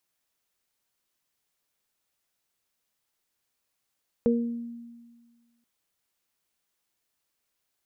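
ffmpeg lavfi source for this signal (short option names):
-f lavfi -i "aevalsrc='0.1*pow(10,-3*t/1.62)*sin(2*PI*235*t)+0.112*pow(10,-3*t/0.48)*sin(2*PI*470*t)':d=1.38:s=44100"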